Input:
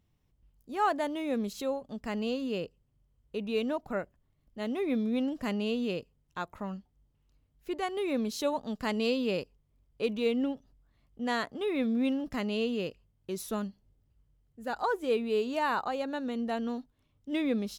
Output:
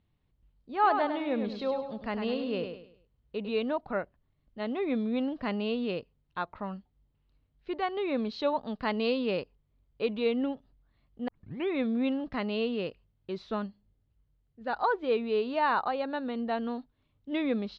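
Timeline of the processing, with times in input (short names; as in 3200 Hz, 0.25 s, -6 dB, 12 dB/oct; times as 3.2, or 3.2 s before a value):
0.73–3.49 feedback echo 0.102 s, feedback 36%, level -7 dB
11.28 tape start 0.42 s
13.66–14.61 resonator 51 Hz, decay 0.49 s, mix 30%
whole clip: dynamic EQ 930 Hz, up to +4 dB, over -45 dBFS, Q 0.78; Chebyshev low-pass 4300 Hz, order 4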